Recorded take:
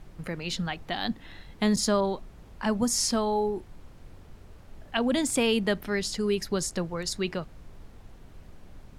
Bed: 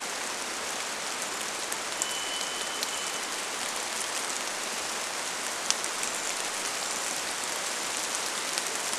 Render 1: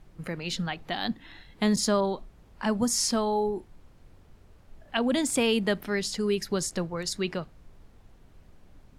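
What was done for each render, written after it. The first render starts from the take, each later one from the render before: noise print and reduce 6 dB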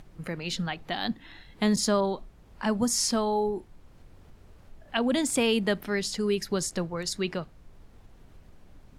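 upward compressor, threshold -45 dBFS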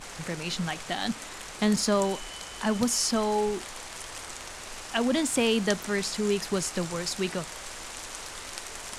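add bed -8.5 dB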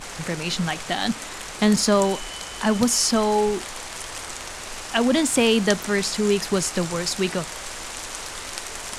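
gain +6 dB

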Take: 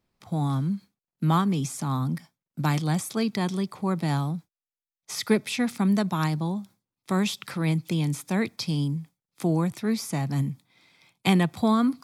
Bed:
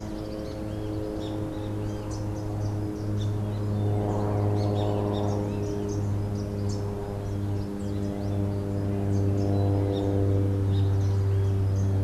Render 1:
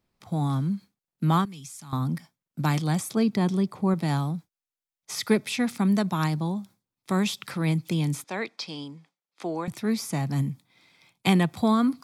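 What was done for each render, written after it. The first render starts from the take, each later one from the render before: 1.45–1.93 passive tone stack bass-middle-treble 5-5-5; 3.11–3.94 tilt shelf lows +4 dB, about 870 Hz; 8.24–9.68 BPF 420–5100 Hz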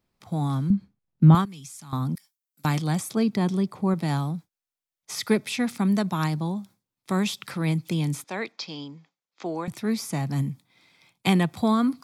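0.7–1.35 RIAA curve playback; 2.15–2.65 differentiator; 8.52–9.46 steep low-pass 7400 Hz 96 dB/oct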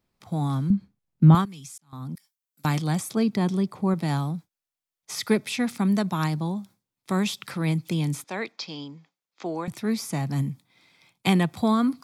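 1.78–2.8 fade in equal-power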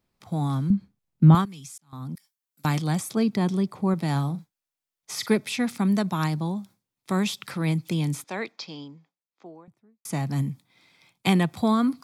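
4.11–5.3 doubler 43 ms -13 dB; 8.25–10.05 studio fade out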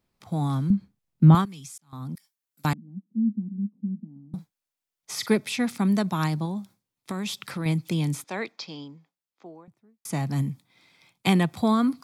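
2.73–4.34 Butterworth band-pass 220 Hz, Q 4.7; 6.45–7.66 compressor, threshold -26 dBFS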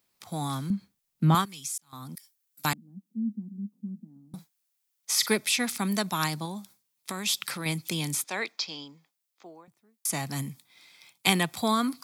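tilt +3 dB/oct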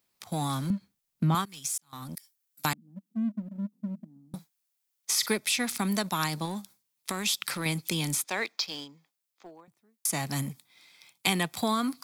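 sample leveller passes 1; compressor 2:1, threshold -28 dBFS, peak gain reduction 8 dB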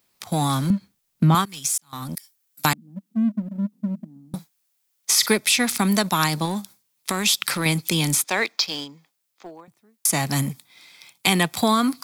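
gain +8.5 dB; limiter -3 dBFS, peak gain reduction 2.5 dB

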